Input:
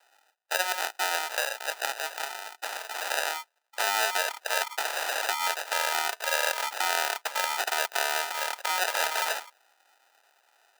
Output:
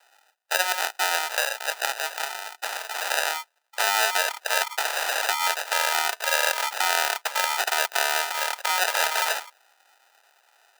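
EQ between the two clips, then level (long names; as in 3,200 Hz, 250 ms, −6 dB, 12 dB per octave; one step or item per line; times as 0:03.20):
low-shelf EQ 340 Hz −7 dB
+4.5 dB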